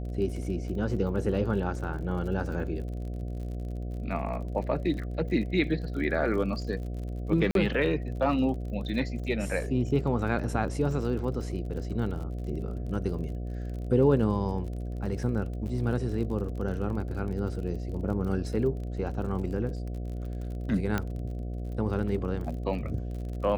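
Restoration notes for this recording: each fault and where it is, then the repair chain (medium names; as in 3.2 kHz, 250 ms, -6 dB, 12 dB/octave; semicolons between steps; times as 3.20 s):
buzz 60 Hz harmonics 12 -34 dBFS
crackle 40 per s -38 dBFS
7.51–7.55 s: dropout 42 ms
20.98 s: pop -15 dBFS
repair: de-click; de-hum 60 Hz, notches 12; interpolate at 7.51 s, 42 ms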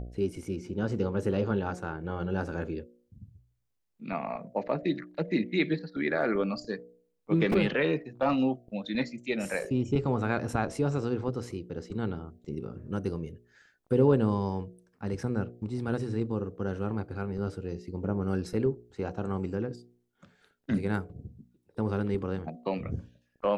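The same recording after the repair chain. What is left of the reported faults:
nothing left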